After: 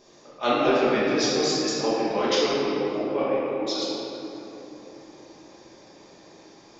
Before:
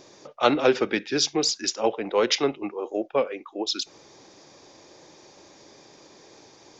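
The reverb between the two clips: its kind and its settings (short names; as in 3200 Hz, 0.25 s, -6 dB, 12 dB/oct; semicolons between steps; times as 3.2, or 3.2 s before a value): shoebox room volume 200 m³, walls hard, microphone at 1.3 m; gain -8.5 dB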